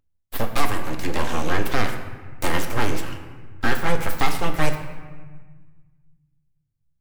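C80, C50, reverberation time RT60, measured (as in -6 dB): 9.5 dB, 8.0 dB, 1.4 s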